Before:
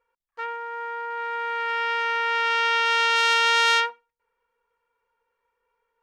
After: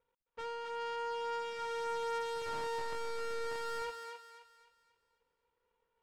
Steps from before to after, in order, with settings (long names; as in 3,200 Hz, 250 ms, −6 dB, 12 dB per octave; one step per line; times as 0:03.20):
gap after every zero crossing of 0.26 ms
low-pass filter 2,100 Hz 12 dB per octave
parametric band 1,200 Hz −5 dB 2.8 octaves
soft clipping −32.5 dBFS, distortion −3 dB
feedback echo with a high-pass in the loop 263 ms, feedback 41%, high-pass 630 Hz, level −5 dB
level +1 dB